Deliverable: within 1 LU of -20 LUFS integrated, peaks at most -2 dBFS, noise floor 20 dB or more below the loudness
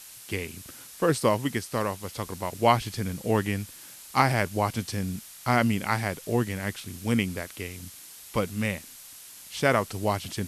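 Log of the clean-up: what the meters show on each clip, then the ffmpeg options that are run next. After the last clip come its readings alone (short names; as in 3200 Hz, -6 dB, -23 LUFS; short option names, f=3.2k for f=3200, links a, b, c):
noise floor -47 dBFS; noise floor target -48 dBFS; loudness -28.0 LUFS; peak -6.0 dBFS; loudness target -20.0 LUFS
-> -af "afftdn=nr=6:nf=-47"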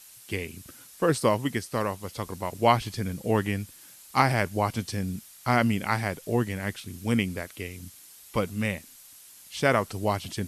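noise floor -51 dBFS; loudness -28.0 LUFS; peak -6.0 dBFS; loudness target -20.0 LUFS
-> -af "volume=8dB,alimiter=limit=-2dB:level=0:latency=1"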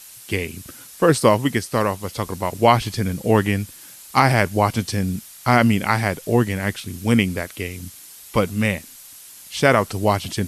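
loudness -20.5 LUFS; peak -2.0 dBFS; noise floor -43 dBFS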